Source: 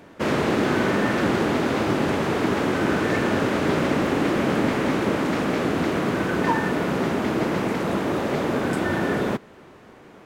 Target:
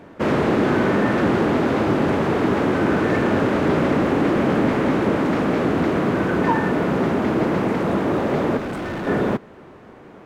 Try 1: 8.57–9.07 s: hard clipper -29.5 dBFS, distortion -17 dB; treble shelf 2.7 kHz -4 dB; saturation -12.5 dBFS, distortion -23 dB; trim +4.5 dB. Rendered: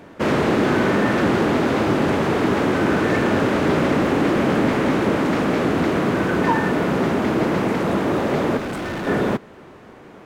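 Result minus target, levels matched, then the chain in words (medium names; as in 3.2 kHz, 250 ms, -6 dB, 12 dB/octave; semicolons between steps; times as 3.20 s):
4 kHz band +3.5 dB
8.57–9.07 s: hard clipper -29.5 dBFS, distortion -17 dB; treble shelf 2.7 kHz -10.5 dB; saturation -12.5 dBFS, distortion -24 dB; trim +4.5 dB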